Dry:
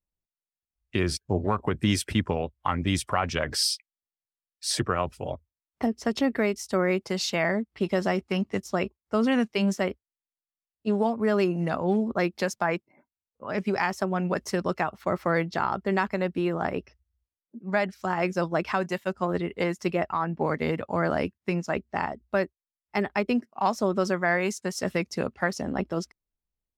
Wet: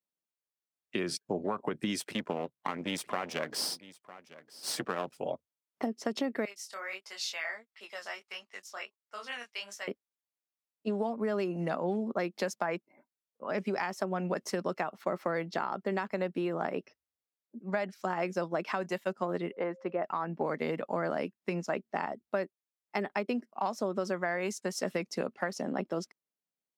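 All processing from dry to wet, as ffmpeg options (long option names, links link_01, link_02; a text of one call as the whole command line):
ffmpeg -i in.wav -filter_complex "[0:a]asettb=1/sr,asplit=3[link_01][link_02][link_03];[link_01]atrim=end=2.004[link_04];[link_02]atrim=start=2:end=5.18,asetpts=PTS-STARTPTS,afade=type=in:duration=0.004:curve=qsin,afade=type=out:start_time=3.176:duration=0.004:curve=qsin,aeval=exprs='if(lt(val(0),0),0.251*val(0),val(0))':channel_layout=same,aecho=1:1:954:0.1,atrim=end_sample=140238[link_05];[link_03]atrim=start=5.176[link_06];[link_04][link_05]acrossfade=duration=0.004:curve1=hsin:curve2=qsin[link_07];[link_07][link_06]acrossfade=duration=0.004:curve1=qsin:curve2=hsin,asettb=1/sr,asplit=3[link_08][link_09][link_10];[link_08]atrim=end=6.454[link_11];[link_09]atrim=start=6.45:end=9.88,asetpts=PTS-STARTPTS,afade=type=in:duration=0.004:curve=qsin,afade=type=out:start_time=3.426:duration=0.004:curve=qsin,highpass=1400,flanger=delay=19:depth=6.3:speed=1.5[link_12];[link_10]atrim=start=9.876[link_13];[link_11][link_12]acrossfade=duration=0.004:curve1=hsin:curve2=qsin[link_14];[link_14][link_13]acrossfade=duration=0.004:curve1=qsin:curve2=hsin,asettb=1/sr,asplit=3[link_15][link_16][link_17];[link_15]atrim=end=19.514[link_18];[link_16]atrim=start=19.51:end=20.04,asetpts=PTS-STARTPTS,afade=type=in:duration=0.004:curve=qsin,afade=type=out:start_time=0.526:duration=0.004:curve=qsin,lowpass=1400,lowshelf=frequency=300:gain=-11,aeval=exprs='val(0)+0.00251*sin(2*PI*530*n/s)':channel_layout=same[link_19];[link_17]atrim=start=20.036[link_20];[link_18][link_19]acrossfade=duration=0.004:curve1=hsin:curve2=qsin[link_21];[link_21][link_20]acrossfade=duration=0.004:curve1=qsin:curve2=hsin,highpass=frequency=170:width=0.5412,highpass=frequency=170:width=1.3066,acompressor=threshold=-26dB:ratio=6,equalizer=frequency=570:width_type=o:width=0.77:gain=3,volume=-3dB" out.wav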